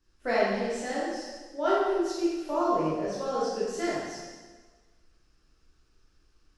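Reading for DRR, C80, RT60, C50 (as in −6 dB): −9.0 dB, 0.5 dB, 1.4 s, −3.0 dB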